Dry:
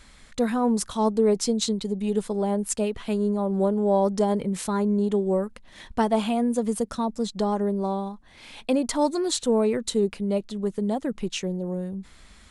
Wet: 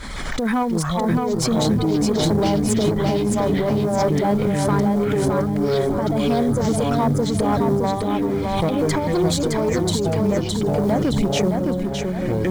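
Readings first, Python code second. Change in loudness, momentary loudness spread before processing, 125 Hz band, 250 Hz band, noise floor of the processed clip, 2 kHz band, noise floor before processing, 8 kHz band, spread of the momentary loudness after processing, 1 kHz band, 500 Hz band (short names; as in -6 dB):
+5.0 dB, 8 LU, +12.0 dB, +5.5 dB, -24 dBFS, +9.5 dB, -51 dBFS, +3.0 dB, 3 LU, +5.5 dB, +4.0 dB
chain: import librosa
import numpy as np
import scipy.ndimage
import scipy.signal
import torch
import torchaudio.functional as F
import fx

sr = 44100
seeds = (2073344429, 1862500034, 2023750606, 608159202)

y = fx.dereverb_blind(x, sr, rt60_s=2.0)
y = fx.echo_pitch(y, sr, ms=160, semitones=-6, count=3, db_per_echo=-6.0)
y = fx.high_shelf(y, sr, hz=4200.0, db=-9.0)
y = fx.over_compress(y, sr, threshold_db=-25.0, ratio=-0.5)
y = fx.tube_stage(y, sr, drive_db=23.0, bias=0.35)
y = fx.quant_float(y, sr, bits=4)
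y = fx.notch(y, sr, hz=2700.0, q=6.4)
y = fx.echo_feedback(y, sr, ms=614, feedback_pct=33, wet_db=-4.0)
y = fx.pre_swell(y, sr, db_per_s=30.0)
y = y * librosa.db_to_amplitude(8.5)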